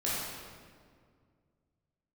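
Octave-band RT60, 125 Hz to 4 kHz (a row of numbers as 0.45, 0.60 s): 2.8, 2.6, 2.2, 1.8, 1.5, 1.3 s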